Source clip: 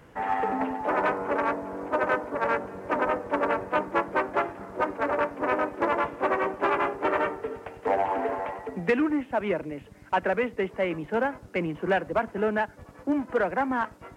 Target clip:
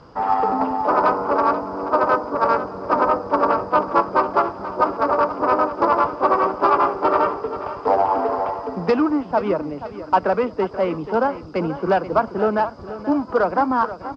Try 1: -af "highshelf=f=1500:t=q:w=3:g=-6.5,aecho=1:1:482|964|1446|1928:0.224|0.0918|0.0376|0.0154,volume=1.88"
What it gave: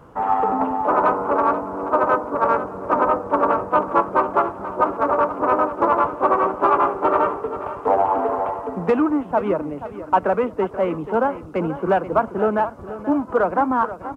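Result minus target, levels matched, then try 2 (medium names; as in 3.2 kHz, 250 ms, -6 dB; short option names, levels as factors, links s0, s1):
4 kHz band -6.0 dB
-af "lowpass=f=4900:t=q:w=11,highshelf=f=1500:t=q:w=3:g=-6.5,aecho=1:1:482|964|1446|1928:0.224|0.0918|0.0376|0.0154,volume=1.88"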